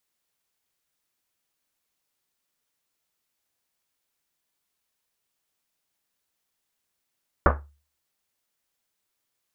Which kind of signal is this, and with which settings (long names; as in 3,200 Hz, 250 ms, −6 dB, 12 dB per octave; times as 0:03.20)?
drum after Risset, pitch 72 Hz, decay 0.39 s, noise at 860 Hz, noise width 1,300 Hz, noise 50%